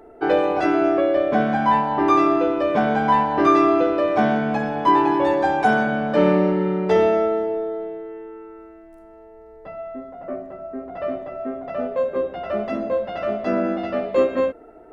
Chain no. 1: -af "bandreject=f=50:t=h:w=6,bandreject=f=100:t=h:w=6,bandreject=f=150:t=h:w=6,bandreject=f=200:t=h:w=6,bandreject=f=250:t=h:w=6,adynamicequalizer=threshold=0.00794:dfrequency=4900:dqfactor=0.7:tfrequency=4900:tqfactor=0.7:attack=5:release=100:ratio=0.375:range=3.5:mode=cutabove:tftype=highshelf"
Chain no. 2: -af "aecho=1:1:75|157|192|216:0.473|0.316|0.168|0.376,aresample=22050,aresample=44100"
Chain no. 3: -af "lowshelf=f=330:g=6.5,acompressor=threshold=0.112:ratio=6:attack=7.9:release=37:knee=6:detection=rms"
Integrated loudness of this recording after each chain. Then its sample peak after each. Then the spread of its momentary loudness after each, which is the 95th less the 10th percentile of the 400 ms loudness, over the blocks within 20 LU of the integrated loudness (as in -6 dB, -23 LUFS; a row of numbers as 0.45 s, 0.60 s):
-20.0 LUFS, -19.0 LUFS, -23.0 LUFS; -4.5 dBFS, -3.5 dBFS, -10.5 dBFS; 16 LU, 16 LU, 11 LU